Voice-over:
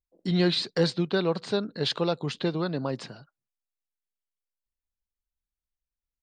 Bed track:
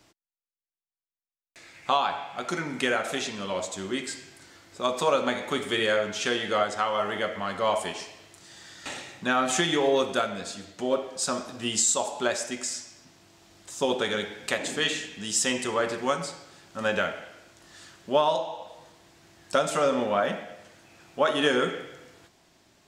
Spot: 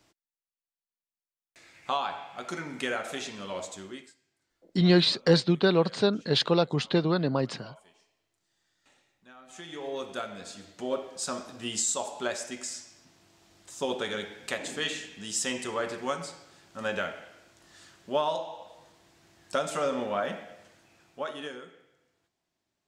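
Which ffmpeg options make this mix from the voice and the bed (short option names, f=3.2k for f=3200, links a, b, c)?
-filter_complex "[0:a]adelay=4500,volume=3dB[a];[1:a]volume=17.5dB,afade=t=out:st=3.69:d=0.45:silence=0.0749894,afade=t=in:st=9.46:d=1.23:silence=0.0707946,afade=t=out:st=20.63:d=1.01:silence=0.141254[b];[a][b]amix=inputs=2:normalize=0"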